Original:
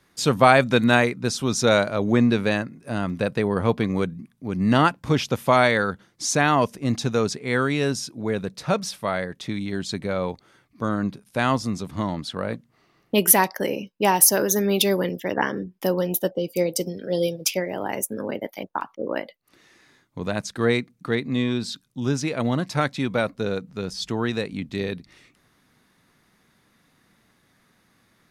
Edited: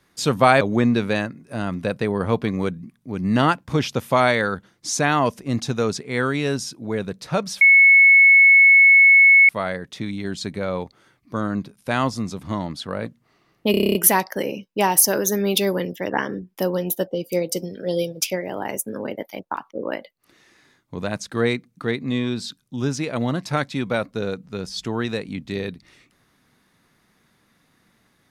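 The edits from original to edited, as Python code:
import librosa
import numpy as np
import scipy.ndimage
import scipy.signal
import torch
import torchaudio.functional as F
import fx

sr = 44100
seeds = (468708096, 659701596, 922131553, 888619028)

y = fx.edit(x, sr, fx.cut(start_s=0.61, length_s=1.36),
    fx.insert_tone(at_s=8.97, length_s=1.88, hz=2200.0, db=-8.0),
    fx.stutter(start_s=13.19, slice_s=0.03, count=9), tone=tone)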